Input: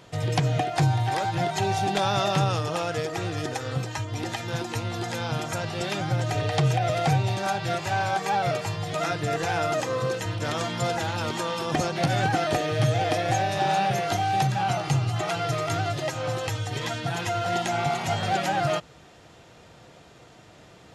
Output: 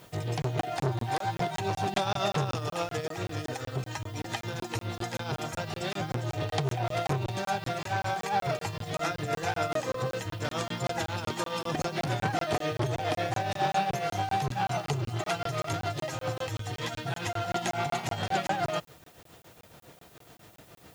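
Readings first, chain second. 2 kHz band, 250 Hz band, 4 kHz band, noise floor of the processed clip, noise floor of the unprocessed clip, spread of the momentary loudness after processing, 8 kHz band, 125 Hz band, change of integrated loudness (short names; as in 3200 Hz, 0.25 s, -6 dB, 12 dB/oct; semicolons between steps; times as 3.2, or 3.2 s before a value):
-5.0 dB, -5.5 dB, -5.0 dB, -62 dBFS, -51 dBFS, 6 LU, -5.5 dB, -7.0 dB, -5.5 dB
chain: tremolo triangle 7.2 Hz, depth 70%; added noise blue -61 dBFS; crackling interface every 0.19 s, samples 1024, zero, from 0.42; core saturation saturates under 690 Hz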